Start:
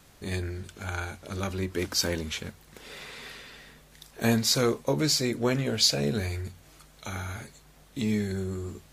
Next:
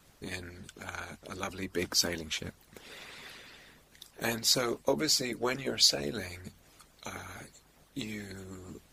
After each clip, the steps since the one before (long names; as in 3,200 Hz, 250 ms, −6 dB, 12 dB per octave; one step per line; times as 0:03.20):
harmonic and percussive parts rebalanced harmonic −16 dB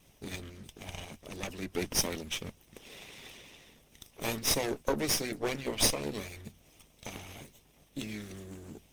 lower of the sound and its delayed copy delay 0.35 ms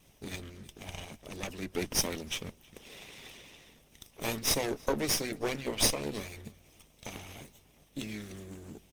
slap from a distant wall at 55 metres, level −23 dB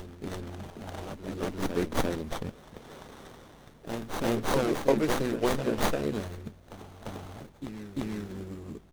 backwards echo 346 ms −6 dB
windowed peak hold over 17 samples
level +5.5 dB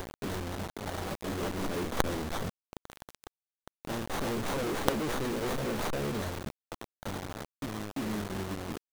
log-companded quantiser 2 bits
level −6 dB